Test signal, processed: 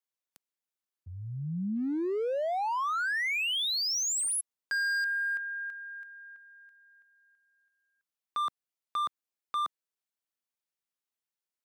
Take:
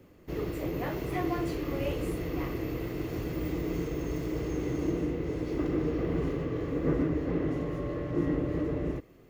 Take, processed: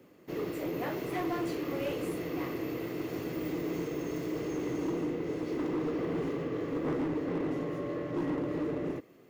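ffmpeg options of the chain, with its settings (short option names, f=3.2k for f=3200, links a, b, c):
-af "highpass=180,asoftclip=type=hard:threshold=-28dB"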